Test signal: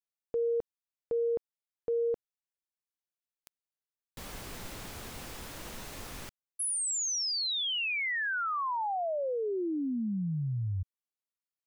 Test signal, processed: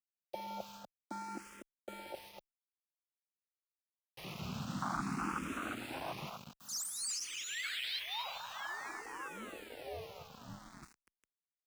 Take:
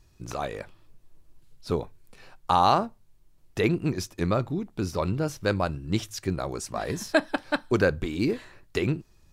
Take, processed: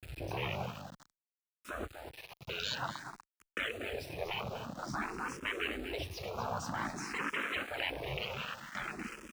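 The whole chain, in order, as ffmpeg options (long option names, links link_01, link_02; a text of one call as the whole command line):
ffmpeg -i in.wav -filter_complex "[0:a]aeval=exprs='val(0)+0.5*0.0282*sgn(val(0))':channel_layout=same,highpass=120,equalizer=frequency=120:width_type=q:width=4:gain=-7,equalizer=frequency=410:width_type=q:width=4:gain=-6,equalizer=frequency=1300:width_type=q:width=4:gain=9,equalizer=frequency=2600:width_type=q:width=4:gain=8,lowpass=frequency=9900:width=0.5412,lowpass=frequency=9900:width=1.3066,afwtdn=0.0316,afftfilt=real='re*lt(hypot(re,im),0.0794)':imag='im*lt(hypot(re,im),0.0794)':win_size=1024:overlap=0.75,highshelf=frequency=7100:gain=-7,asplit=2[link_01][link_02];[link_02]alimiter=level_in=8dB:limit=-24dB:level=0:latency=1:release=63,volume=-8dB,volume=0dB[link_03];[link_01][link_03]amix=inputs=2:normalize=0,flanger=delay=4.5:depth=3.9:regen=-78:speed=0.23:shape=triangular,afreqshift=-20,agate=range=-12dB:threshold=-58dB:ratio=16:release=257:detection=peak,asplit=2[link_04][link_05];[link_05]adelay=243,lowpass=frequency=4200:poles=1,volume=-8dB,asplit=2[link_06][link_07];[link_07]adelay=243,lowpass=frequency=4200:poles=1,volume=0.16,asplit=2[link_08][link_09];[link_09]adelay=243,lowpass=frequency=4200:poles=1,volume=0.16[link_10];[link_06][link_08][link_10]amix=inputs=3:normalize=0[link_11];[link_04][link_11]amix=inputs=2:normalize=0,aeval=exprs='val(0)*gte(abs(val(0)),0.00282)':channel_layout=same,asplit=2[link_12][link_13];[link_13]afreqshift=0.52[link_14];[link_12][link_14]amix=inputs=2:normalize=1,volume=5dB" out.wav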